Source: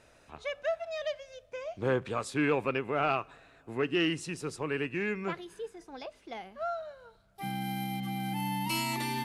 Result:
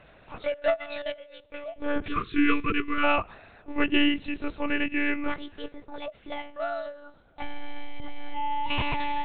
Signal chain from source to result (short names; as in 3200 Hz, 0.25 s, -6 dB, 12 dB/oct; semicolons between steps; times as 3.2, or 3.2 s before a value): 0.93–1.97 resonator 160 Hz, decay 0.76 s, harmonics all, mix 50%; monotone LPC vocoder at 8 kHz 290 Hz; 2.08–3.04 spectral gain 490–1000 Hz -23 dB; gain +7 dB